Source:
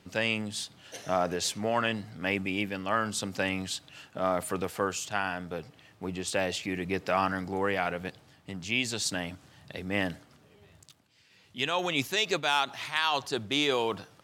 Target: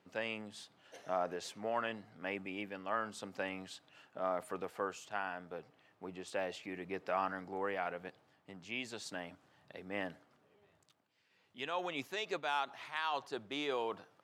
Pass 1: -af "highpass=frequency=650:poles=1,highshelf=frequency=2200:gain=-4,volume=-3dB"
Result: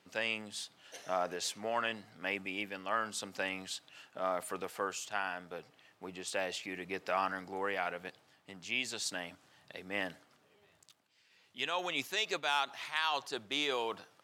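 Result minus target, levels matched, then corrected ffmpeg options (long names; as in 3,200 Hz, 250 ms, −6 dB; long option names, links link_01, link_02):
4,000 Hz band +4.5 dB
-af "highpass=frequency=650:poles=1,highshelf=frequency=2200:gain=-16,volume=-3dB"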